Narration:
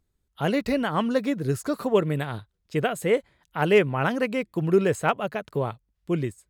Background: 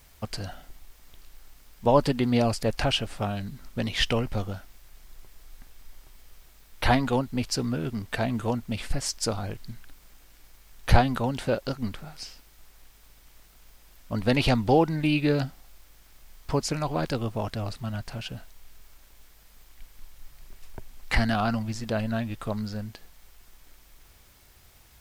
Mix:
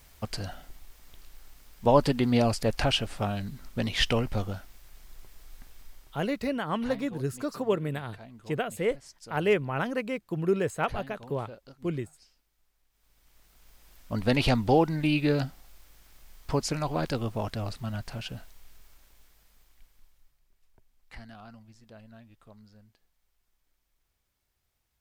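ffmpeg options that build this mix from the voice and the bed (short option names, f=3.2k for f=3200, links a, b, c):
-filter_complex "[0:a]adelay=5750,volume=-5.5dB[a];[1:a]volume=18.5dB,afade=t=out:st=5.8:d=0.71:silence=0.1,afade=t=in:st=12.9:d=1.03:silence=0.112202,afade=t=out:st=18.42:d=1.97:silence=0.0891251[b];[a][b]amix=inputs=2:normalize=0"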